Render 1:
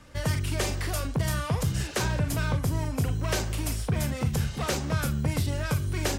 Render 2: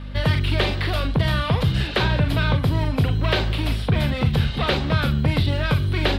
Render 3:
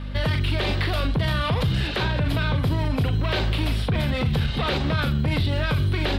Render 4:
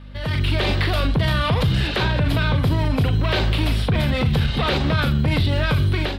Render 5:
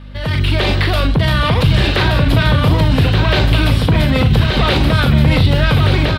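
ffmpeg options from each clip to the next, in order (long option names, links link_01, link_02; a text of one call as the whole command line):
ffmpeg -i in.wav -filter_complex "[0:a]aeval=exprs='val(0)+0.0112*(sin(2*PI*50*n/s)+sin(2*PI*2*50*n/s)/2+sin(2*PI*3*50*n/s)/3+sin(2*PI*4*50*n/s)/4+sin(2*PI*5*50*n/s)/5)':channel_layout=same,highshelf=frequency=5000:width_type=q:width=3:gain=-10,acrossover=split=4600[link_01][link_02];[link_02]acompressor=threshold=-47dB:ratio=4:attack=1:release=60[link_03];[link_01][link_03]amix=inputs=2:normalize=0,volume=7dB" out.wav
ffmpeg -i in.wav -af "alimiter=limit=-16dB:level=0:latency=1:release=34,volume=1.5dB" out.wav
ffmpeg -i in.wav -af "dynaudnorm=framelen=200:gausssize=3:maxgain=13dB,volume=-8dB" out.wav
ffmpeg -i in.wav -af "aecho=1:1:1176:0.596,volume=5.5dB" out.wav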